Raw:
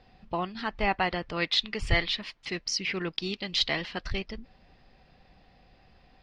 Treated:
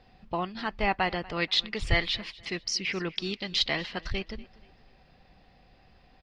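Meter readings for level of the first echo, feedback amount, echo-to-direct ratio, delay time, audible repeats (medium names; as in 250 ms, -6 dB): -21.5 dB, 35%, -21.0 dB, 240 ms, 2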